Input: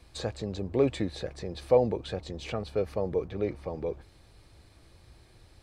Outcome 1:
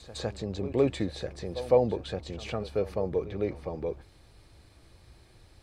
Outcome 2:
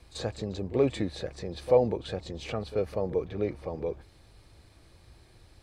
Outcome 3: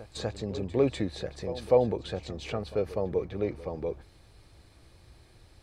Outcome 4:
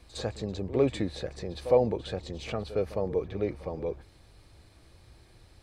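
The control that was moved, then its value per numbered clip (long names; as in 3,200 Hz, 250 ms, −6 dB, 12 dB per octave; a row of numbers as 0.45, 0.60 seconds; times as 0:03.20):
echo ahead of the sound, delay time: 157, 38, 247, 59 milliseconds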